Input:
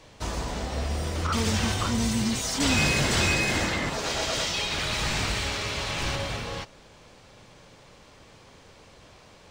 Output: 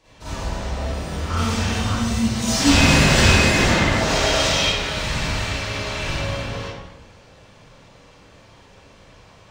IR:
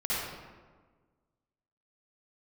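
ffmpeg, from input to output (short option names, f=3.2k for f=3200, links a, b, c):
-filter_complex "[0:a]asettb=1/sr,asplit=3[a][b][c];[a]atrim=end=2.424[d];[b]atrim=start=2.42:end=4.66,asetpts=PTS-STARTPTS,afade=t=in:d=0.004:c=qsin,afade=t=out:st=2.236:d=0.004:c=qsin,acontrast=62[e];[c]atrim=start=4.656[f];[d][e]acrossfade=d=0.004:c1=hsin:c2=qsin[g];[g][f]acrossfade=d=0.004:c1=qsin:c2=hsin[h];[1:a]atrim=start_sample=2205,asetrate=57330,aresample=44100[i];[h][i]afir=irnorm=-1:irlink=0,volume=-3dB"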